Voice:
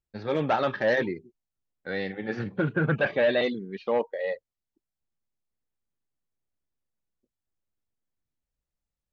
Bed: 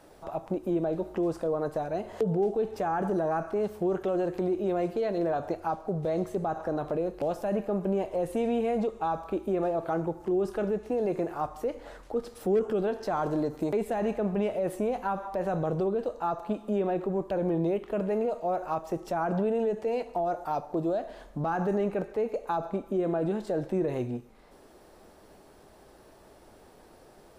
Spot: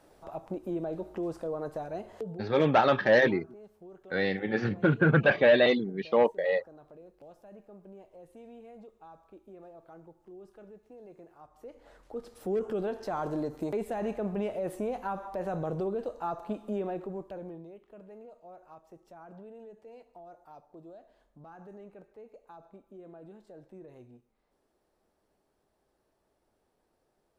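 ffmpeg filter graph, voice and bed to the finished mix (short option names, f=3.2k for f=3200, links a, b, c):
-filter_complex "[0:a]adelay=2250,volume=2.5dB[a];[1:a]volume=12.5dB,afade=t=out:st=1.98:d=0.53:silence=0.149624,afade=t=in:st=11.47:d=1.25:silence=0.125893,afade=t=out:st=16.65:d=1.01:silence=0.141254[b];[a][b]amix=inputs=2:normalize=0"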